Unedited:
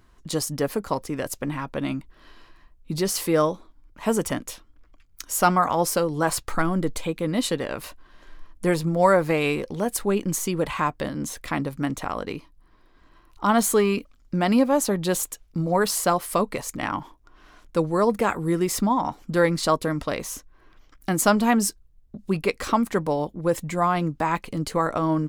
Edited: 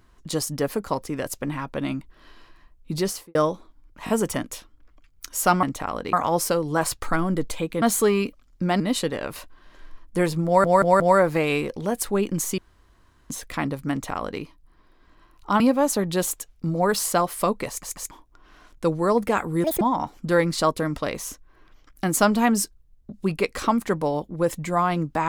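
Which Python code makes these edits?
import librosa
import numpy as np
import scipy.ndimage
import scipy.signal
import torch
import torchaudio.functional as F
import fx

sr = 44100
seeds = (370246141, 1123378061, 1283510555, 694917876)

y = fx.studio_fade_out(x, sr, start_s=3.03, length_s=0.32)
y = fx.edit(y, sr, fx.stutter(start_s=4.05, slice_s=0.02, count=3),
    fx.stutter(start_s=8.94, slice_s=0.18, count=4),
    fx.room_tone_fill(start_s=10.52, length_s=0.72),
    fx.duplicate(start_s=11.85, length_s=0.5, to_s=5.59),
    fx.move(start_s=13.54, length_s=0.98, to_s=7.28),
    fx.stutter_over(start_s=16.61, slice_s=0.14, count=3),
    fx.speed_span(start_s=18.56, length_s=0.3, speed=1.77), tone=tone)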